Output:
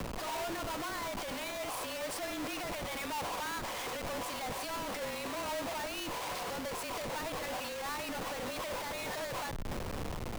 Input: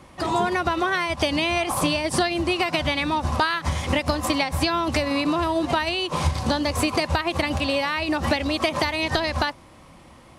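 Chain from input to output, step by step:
high-pass filter 410 Hz 24 dB per octave
downward compressor 6 to 1, threshold −34 dBFS, peak gain reduction 16.5 dB
spring reverb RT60 2.3 s, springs 56 ms, chirp 65 ms, DRR 15.5 dB
comparator with hysteresis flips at −46 dBFS
frequency shifter −31 Hz
brickwall limiter −33.5 dBFS, peak gain reduction 8 dB
level +4 dB

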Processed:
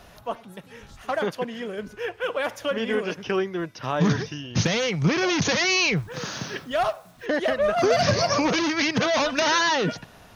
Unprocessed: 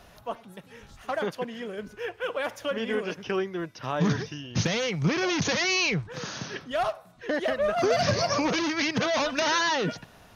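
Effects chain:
0:05.96–0:07.26: bit-depth reduction 10 bits, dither none
level +3.5 dB

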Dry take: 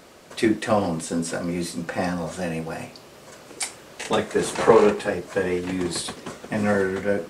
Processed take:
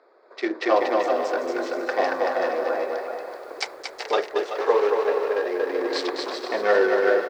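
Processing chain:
adaptive Wiener filter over 15 samples
elliptic band-pass filter 390–5,300 Hz, stop band 40 dB
bouncing-ball delay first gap 230 ms, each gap 0.65×, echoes 5
automatic gain control gain up to 13 dB
feedback echo at a low word length 381 ms, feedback 35%, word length 7 bits, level −11.5 dB
level −5.5 dB

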